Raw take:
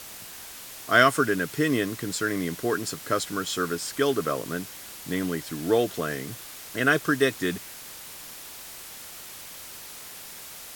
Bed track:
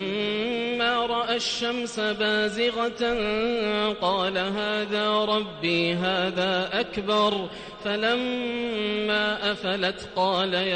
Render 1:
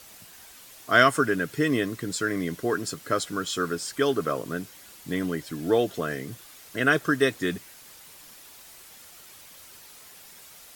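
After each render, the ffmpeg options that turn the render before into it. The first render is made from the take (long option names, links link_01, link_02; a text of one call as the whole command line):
ffmpeg -i in.wav -af "afftdn=noise_reduction=8:noise_floor=-42" out.wav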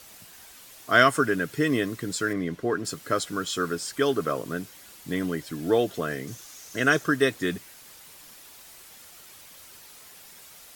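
ffmpeg -i in.wav -filter_complex "[0:a]asettb=1/sr,asplit=3[link_01][link_02][link_03];[link_01]atrim=end=2.334[link_04];[link_02]atrim=start=2.33:end=2.85,asetpts=PTS-STARTPTS,afade=type=in:duration=0.004:curve=qsin,afade=type=out:start_time=0.516:duration=0.004:curve=qsin,lowpass=frequency=2400:poles=1[link_05];[link_03]atrim=start=2.846[link_06];[link_04][link_05]acrossfade=duration=0.004:curve1=hsin:curve2=qsin[link_07];[link_07][link_06]acrossfade=duration=0.004:curve1=qsin:curve2=hsin,asettb=1/sr,asplit=3[link_08][link_09][link_10];[link_08]atrim=end=6.274[link_11];[link_09]atrim=start=6.27:end=7.04,asetpts=PTS-STARTPTS,afade=type=in:duration=0.004:curve=qsin,afade=type=out:start_time=0.766:duration=0.004:curve=qsin,equalizer=frequency=6200:width=2.8:gain=11[link_12];[link_10]atrim=start=7.036[link_13];[link_11][link_12]acrossfade=duration=0.004:curve1=hsin:curve2=qsin[link_14];[link_14][link_13]acrossfade=duration=0.004:curve1=qsin:curve2=hsin" out.wav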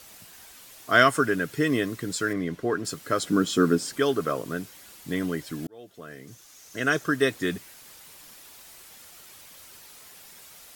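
ffmpeg -i in.wav -filter_complex "[0:a]asettb=1/sr,asplit=3[link_01][link_02][link_03];[link_01]atrim=end=3.224[link_04];[link_02]atrim=start=3.22:end=3.98,asetpts=PTS-STARTPTS,afade=type=in:duration=0.004:curve=qsin,afade=type=out:start_time=0.756:duration=0.004:curve=qsin,equalizer=frequency=240:width=0.78:gain=12.5[link_05];[link_03]atrim=start=3.976[link_06];[link_04][link_05]acrossfade=duration=0.004:curve1=hsin:curve2=qsin[link_07];[link_07][link_06]acrossfade=duration=0.004:curve1=qsin:curve2=hsin,asplit=2[link_08][link_09];[link_08]atrim=end=5.67,asetpts=PTS-STARTPTS,afade=type=out:start_time=5.666:duration=0.004:curve=hsin[link_10];[link_09]atrim=start=5.67,asetpts=PTS-STARTPTS,afade=type=in:duration=1.68[link_11];[link_10][link_11]concat=n=2:v=0:a=1" out.wav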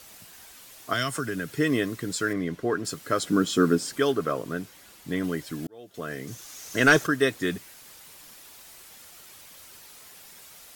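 ffmpeg -i in.wav -filter_complex "[0:a]asettb=1/sr,asplit=3[link_01][link_02][link_03];[link_01]atrim=end=0.934[link_04];[link_02]atrim=start=0.93:end=1.57,asetpts=PTS-STARTPTS,afade=type=in:duration=0.004:curve=qsin,afade=type=out:start_time=0.636:duration=0.004:curve=qsin,acrossover=split=190|3000[link_05][link_06][link_07];[link_06]acompressor=threshold=-29dB:ratio=4:attack=3.2:release=140:knee=2.83:detection=peak[link_08];[link_05][link_08][link_07]amix=inputs=3:normalize=0[link_09];[link_03]atrim=start=1.566[link_10];[link_04][link_09]acrossfade=duration=0.004:curve1=hsin:curve2=qsin[link_11];[link_11][link_10]acrossfade=duration=0.004:curve1=qsin:curve2=hsin,asettb=1/sr,asplit=3[link_12][link_13][link_14];[link_12]atrim=end=4.124[link_15];[link_13]atrim=start=4.12:end=5.24,asetpts=PTS-STARTPTS,afade=type=in:duration=0.004:curve=qsin,afade=type=out:start_time=1.116:duration=0.004:curve=qsin,highshelf=frequency=4400:gain=-4.5[link_16];[link_14]atrim=start=5.236[link_17];[link_15][link_16]acrossfade=duration=0.004:curve1=hsin:curve2=qsin[link_18];[link_18][link_17]acrossfade=duration=0.004:curve1=qsin:curve2=hsin,asettb=1/sr,asplit=3[link_19][link_20][link_21];[link_19]atrim=end=5.944[link_22];[link_20]atrim=start=5.94:end=7.07,asetpts=PTS-STARTPTS,afade=type=in:duration=0.004:curve=qsin,afade=type=out:start_time=1.126:duration=0.004:curve=qsin,aeval=exprs='0.335*sin(PI/2*1.58*val(0)/0.335)':channel_layout=same[link_23];[link_21]atrim=start=7.066[link_24];[link_22][link_23]acrossfade=duration=0.004:curve1=hsin:curve2=qsin[link_25];[link_25][link_24]acrossfade=duration=0.004:curve1=qsin:curve2=hsin" out.wav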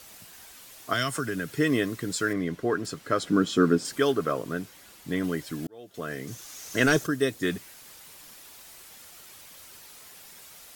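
ffmpeg -i in.wav -filter_complex "[0:a]asettb=1/sr,asplit=3[link_01][link_02][link_03];[link_01]atrim=end=2.864[link_04];[link_02]atrim=start=2.86:end=3.85,asetpts=PTS-STARTPTS,afade=type=in:duration=0.004:curve=qsin,afade=type=out:start_time=0.986:duration=0.004:curve=qsin,highshelf=frequency=6600:gain=-10[link_05];[link_03]atrim=start=3.846[link_06];[link_04][link_05]acrossfade=duration=0.004:curve1=hsin:curve2=qsin[link_07];[link_07][link_06]acrossfade=duration=0.004:curve1=qsin:curve2=hsin,asettb=1/sr,asplit=3[link_08][link_09][link_10];[link_08]atrim=end=6.864[link_11];[link_09]atrim=start=6.86:end=7.43,asetpts=PTS-STARTPTS,afade=type=in:duration=0.004:curve=qsin,afade=type=out:start_time=0.566:duration=0.004:curve=qsin,equalizer=frequency=1500:width_type=o:width=2.7:gain=-7[link_12];[link_10]atrim=start=7.426[link_13];[link_11][link_12]acrossfade=duration=0.004:curve1=hsin:curve2=qsin[link_14];[link_14][link_13]acrossfade=duration=0.004:curve1=qsin:curve2=hsin" out.wav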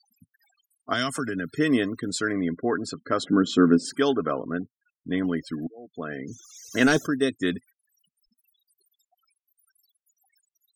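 ffmpeg -i in.wav -af "afftfilt=real='re*gte(hypot(re,im),0.01)':imag='im*gte(hypot(re,im),0.01)':win_size=1024:overlap=0.75,equalizer=frequency=125:width_type=o:width=0.33:gain=-5,equalizer=frequency=250:width_type=o:width=0.33:gain=7,equalizer=frequency=800:width_type=o:width=0.33:gain=6,equalizer=frequency=4000:width_type=o:width=0.33:gain=5" out.wav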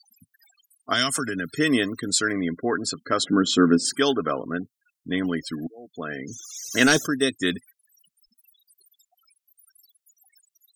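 ffmpeg -i in.wav -af "highshelf=frequency=2300:gain=10.5" out.wav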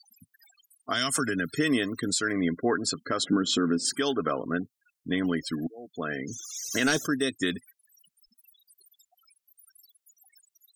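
ffmpeg -i in.wav -af "alimiter=limit=-15dB:level=0:latency=1:release=204" out.wav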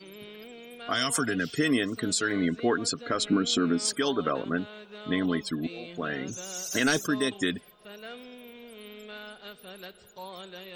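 ffmpeg -i in.wav -i bed.wav -filter_complex "[1:a]volume=-19dB[link_01];[0:a][link_01]amix=inputs=2:normalize=0" out.wav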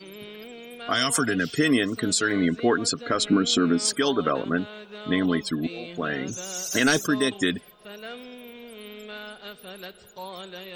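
ffmpeg -i in.wav -af "volume=4dB" out.wav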